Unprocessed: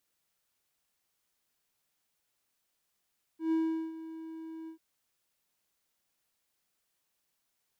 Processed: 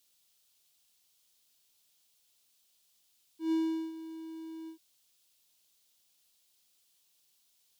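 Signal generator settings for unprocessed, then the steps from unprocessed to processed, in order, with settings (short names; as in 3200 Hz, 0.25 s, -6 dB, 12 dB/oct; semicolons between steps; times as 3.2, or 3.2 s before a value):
ADSR triangle 323 Hz, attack 0.128 s, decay 0.402 s, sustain -15.5 dB, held 1.29 s, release 99 ms -23 dBFS
resonant high shelf 2500 Hz +9 dB, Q 1.5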